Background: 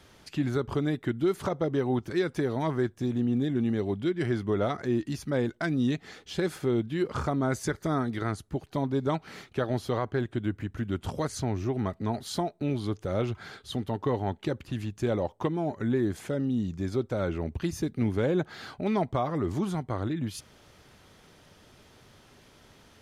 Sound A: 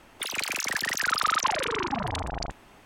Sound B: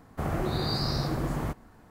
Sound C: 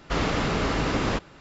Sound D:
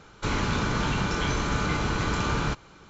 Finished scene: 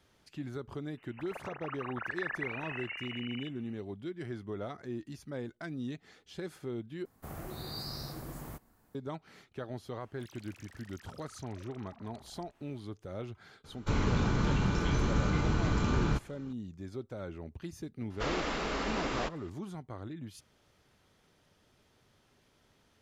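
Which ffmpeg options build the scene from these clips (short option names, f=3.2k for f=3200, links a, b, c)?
-filter_complex "[1:a]asplit=2[a][b];[0:a]volume=-12dB[c];[a]lowpass=f=2.6k:t=q:w=0.5098,lowpass=f=2.6k:t=q:w=0.6013,lowpass=f=2.6k:t=q:w=0.9,lowpass=f=2.6k:t=q:w=2.563,afreqshift=-3000[d];[2:a]aemphasis=mode=production:type=50fm[e];[b]acompressor=threshold=-38dB:ratio=6:attack=3.2:release=140:knee=1:detection=peak[f];[4:a]lowshelf=f=450:g=9[g];[3:a]equalizer=f=110:w=1.1:g=-15[h];[c]asplit=2[i][j];[i]atrim=end=7.054[k];[e]atrim=end=1.9,asetpts=PTS-STARTPTS,volume=-13.5dB[l];[j]atrim=start=8.946[m];[d]atrim=end=2.85,asetpts=PTS-STARTPTS,volume=-12.5dB,afade=t=in:d=0.004:c=hsin,afade=t=out:st=2.846:d=0.004:c=hsin,adelay=970[n];[f]atrim=end=2.85,asetpts=PTS-STARTPTS,volume=-15.5dB,afade=t=in:d=0.004:c=hsin,afade=t=out:st=2.846:d=0.004:c=hsin,adelay=10000[o];[g]atrim=end=2.89,asetpts=PTS-STARTPTS,volume=-9dB,afade=t=in:d=0.004:c=hsin,afade=t=out:st=2.886:d=0.004:c=hsin,adelay=601524S[p];[h]atrim=end=1.4,asetpts=PTS-STARTPTS,volume=-7dB,afade=t=in:d=0.004:c=hsin,afade=t=out:st=1.396:d=0.004:c=hsin,adelay=18100[q];[k][l]acrossfade=d=0.004:c1=hsin:c2=hsin[r];[r][m]acrossfade=d=0.004:c1=hsin:c2=hsin[s];[s][n][o][p][q]amix=inputs=5:normalize=0"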